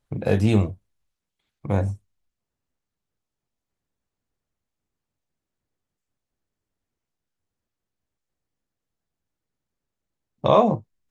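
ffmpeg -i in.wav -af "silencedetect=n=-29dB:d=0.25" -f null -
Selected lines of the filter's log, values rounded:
silence_start: 0.71
silence_end: 1.65 | silence_duration: 0.94
silence_start: 1.93
silence_end: 10.44 | silence_duration: 8.51
silence_start: 10.77
silence_end: 11.11 | silence_duration: 0.34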